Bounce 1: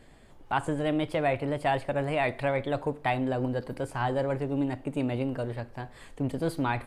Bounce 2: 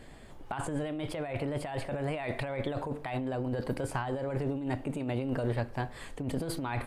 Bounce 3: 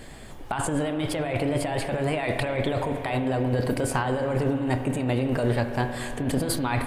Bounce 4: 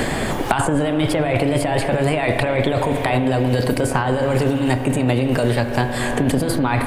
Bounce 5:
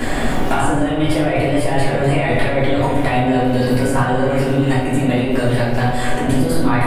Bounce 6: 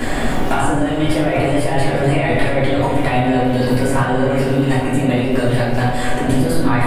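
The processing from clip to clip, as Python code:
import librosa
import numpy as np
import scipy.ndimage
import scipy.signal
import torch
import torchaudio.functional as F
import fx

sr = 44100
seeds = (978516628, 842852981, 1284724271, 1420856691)

y1 = fx.over_compress(x, sr, threshold_db=-33.0, ratio=-1.0)
y2 = fx.high_shelf(y1, sr, hz=4100.0, db=7.0)
y2 = fx.rev_spring(y2, sr, rt60_s=3.6, pass_ms=(32, 46), chirp_ms=65, drr_db=7.0)
y2 = F.gain(torch.from_numpy(y2), 7.0).numpy()
y3 = fx.band_squash(y2, sr, depth_pct=100)
y3 = F.gain(torch.from_numpy(y3), 6.5).numpy()
y4 = fx.room_shoebox(y3, sr, seeds[0], volume_m3=220.0, walls='mixed', distance_m=3.1)
y4 = F.gain(torch.from_numpy(y4), -8.5).numpy()
y5 = y4 + 10.0 ** (-12.5 / 20.0) * np.pad(y4, (int(852 * sr / 1000.0), 0))[:len(y4)]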